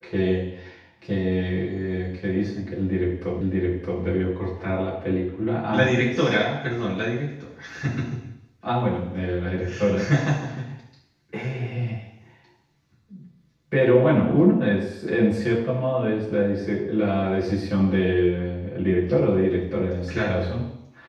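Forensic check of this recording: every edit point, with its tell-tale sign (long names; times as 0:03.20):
0:03.41: the same again, the last 0.62 s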